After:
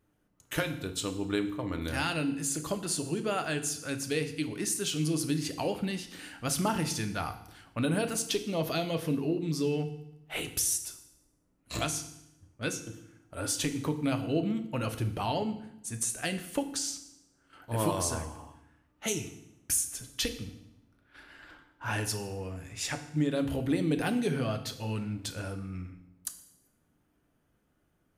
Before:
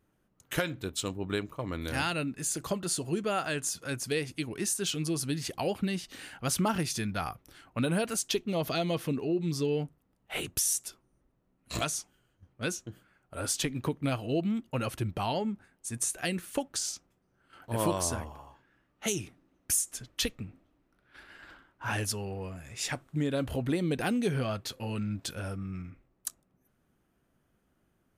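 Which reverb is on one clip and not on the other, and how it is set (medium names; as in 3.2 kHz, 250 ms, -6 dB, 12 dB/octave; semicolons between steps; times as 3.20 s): FDN reverb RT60 0.78 s, low-frequency decay 1.45×, high-frequency decay 1×, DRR 7 dB; trim -1 dB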